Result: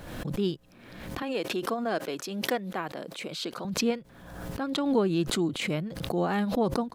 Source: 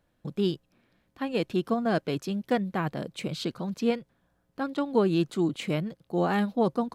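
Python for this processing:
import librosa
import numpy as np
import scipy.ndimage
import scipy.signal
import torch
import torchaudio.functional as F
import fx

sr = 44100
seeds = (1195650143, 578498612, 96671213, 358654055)

y = fx.highpass(x, sr, hz=320.0, slope=12, at=(1.22, 3.65))
y = fx.pre_swell(y, sr, db_per_s=48.0)
y = y * librosa.db_to_amplitude(-2.0)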